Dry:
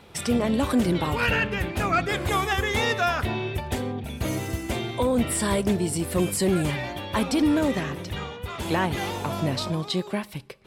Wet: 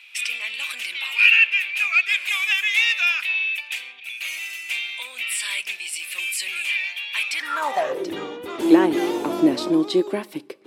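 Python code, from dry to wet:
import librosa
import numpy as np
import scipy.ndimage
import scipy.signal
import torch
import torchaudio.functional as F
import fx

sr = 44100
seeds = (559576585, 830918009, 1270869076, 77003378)

y = fx.filter_sweep_highpass(x, sr, from_hz=2500.0, to_hz=320.0, start_s=7.29, end_s=8.1, q=7.7)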